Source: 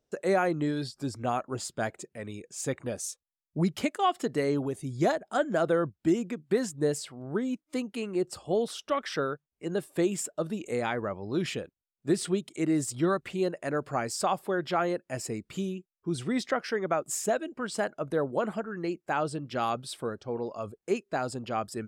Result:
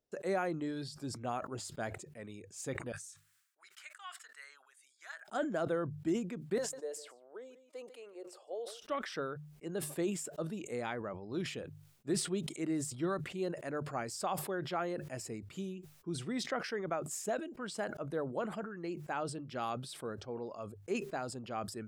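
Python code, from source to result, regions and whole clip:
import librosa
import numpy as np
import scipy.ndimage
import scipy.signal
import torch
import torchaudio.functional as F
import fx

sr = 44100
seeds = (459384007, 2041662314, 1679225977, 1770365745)

y = fx.chain(x, sr, fx.ladder_highpass(hz=1300.0, resonance_pct=55),
    fx.peak_eq(hz=8100.0, db=5.5, octaves=0.51), at=(2.92, 5.28))
y = fx.chain(y, sr, fx.ladder_highpass(hz=450.0, resonance_pct=55),
    fx.echo_single(ms=148, db=-22.5), at=(6.58, 8.82))
y = fx.hum_notches(y, sr, base_hz=50, count=3)
y = fx.sustainer(y, sr, db_per_s=77.0)
y = F.gain(torch.from_numpy(y), -8.5).numpy()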